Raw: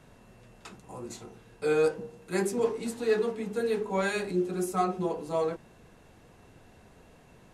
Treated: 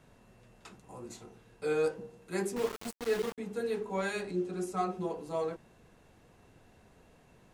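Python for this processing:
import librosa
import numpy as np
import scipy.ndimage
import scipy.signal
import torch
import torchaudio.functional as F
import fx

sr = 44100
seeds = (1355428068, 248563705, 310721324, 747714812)

y = fx.sample_gate(x, sr, floor_db=-30.5, at=(2.56, 3.38))
y = fx.lowpass(y, sr, hz=9000.0, slope=12, at=(4.21, 4.83))
y = y * librosa.db_to_amplitude(-5.0)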